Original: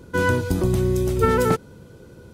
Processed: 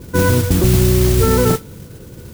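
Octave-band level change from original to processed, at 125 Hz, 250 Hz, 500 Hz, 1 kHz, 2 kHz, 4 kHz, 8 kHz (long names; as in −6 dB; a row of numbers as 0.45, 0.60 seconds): +9.0, +6.5, +4.5, +1.0, +1.0, +11.0, +13.5 decibels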